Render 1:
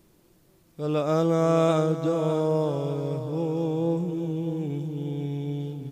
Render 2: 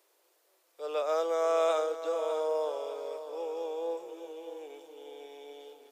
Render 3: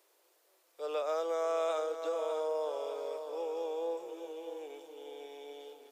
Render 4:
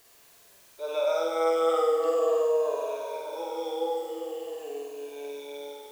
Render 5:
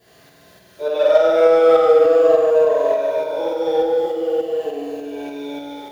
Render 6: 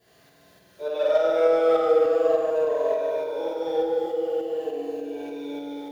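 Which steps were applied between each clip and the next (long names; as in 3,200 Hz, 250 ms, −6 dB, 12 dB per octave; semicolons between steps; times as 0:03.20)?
Butterworth high-pass 450 Hz 36 dB per octave; level −3.5 dB
downward compressor 2 to 1, threshold −33 dBFS, peak gain reduction 6 dB
rippled gain that drifts along the octave scale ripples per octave 1.5, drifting −0.44 Hz, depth 18 dB; in parallel at −10.5 dB: bit-depth reduction 8 bits, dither triangular; on the sum: flutter between parallel walls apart 8.4 metres, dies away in 1.1 s; level −2 dB
convolution reverb RT60 0.70 s, pre-delay 3 ms, DRR −7.5 dB; in parallel at −8 dB: hard clipping −11 dBFS, distortion −5 dB; on the sum: shaped tremolo saw up 3.4 Hz, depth 35%; level −7.5 dB
feedback echo with a band-pass in the loop 217 ms, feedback 74%, band-pass 350 Hz, level −8 dB; level −7.5 dB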